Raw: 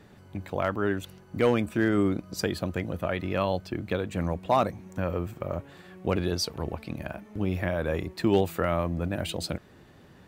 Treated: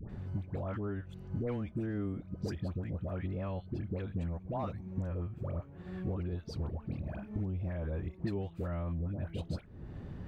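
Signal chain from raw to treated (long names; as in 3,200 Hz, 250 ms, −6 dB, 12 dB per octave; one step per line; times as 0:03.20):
RIAA equalisation playback
downward compressor 4 to 1, threshold −36 dBFS, peak gain reduction 20.5 dB
all-pass dispersion highs, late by 97 ms, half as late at 970 Hz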